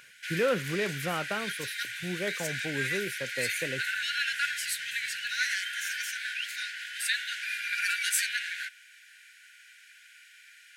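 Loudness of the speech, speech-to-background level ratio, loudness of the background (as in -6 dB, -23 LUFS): -34.0 LUFS, -2.5 dB, -31.5 LUFS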